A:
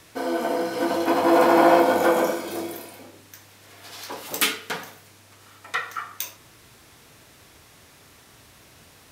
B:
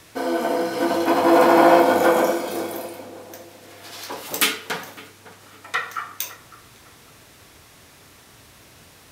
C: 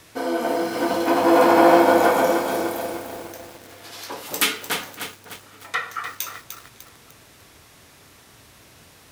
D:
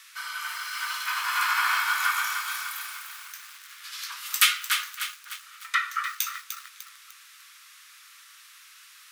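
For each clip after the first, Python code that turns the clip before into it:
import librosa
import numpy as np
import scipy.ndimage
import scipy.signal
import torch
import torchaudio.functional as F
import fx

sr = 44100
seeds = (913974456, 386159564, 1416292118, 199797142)

y1 = fx.echo_filtered(x, sr, ms=556, feedback_pct=40, hz=1200.0, wet_db=-15.0)
y1 = F.gain(torch.from_numpy(y1), 2.5).numpy()
y2 = fx.echo_crushed(y1, sr, ms=300, feedback_pct=55, bits=6, wet_db=-7)
y2 = F.gain(torch.from_numpy(y2), -1.0).numpy()
y3 = scipy.signal.sosfilt(scipy.signal.ellip(4, 1.0, 50, 1200.0, 'highpass', fs=sr, output='sos'), y2)
y3 = F.gain(torch.from_numpy(y3), 1.5).numpy()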